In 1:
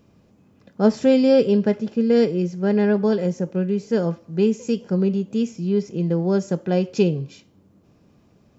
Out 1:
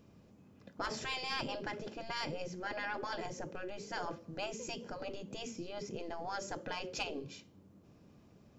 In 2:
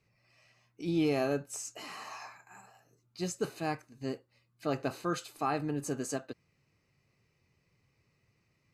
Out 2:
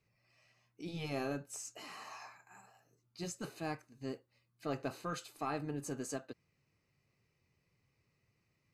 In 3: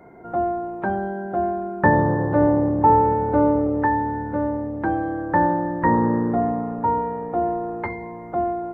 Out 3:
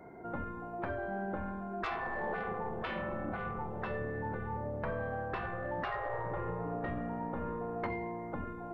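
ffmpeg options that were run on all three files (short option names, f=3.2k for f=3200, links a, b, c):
-af "aeval=exprs='0.75*(cos(1*acos(clip(val(0)/0.75,-1,1)))-cos(1*PI/2))+0.0473*(cos(3*acos(clip(val(0)/0.75,-1,1)))-cos(3*PI/2))+0.0335*(cos(4*acos(clip(val(0)/0.75,-1,1)))-cos(4*PI/2))+0.00841*(cos(8*acos(clip(val(0)/0.75,-1,1)))-cos(8*PI/2))':c=same,afftfilt=real='re*lt(hypot(re,im),0.2)':imag='im*lt(hypot(re,im),0.2)':win_size=1024:overlap=0.75,asoftclip=type=tanh:threshold=-19.5dB,volume=-3dB"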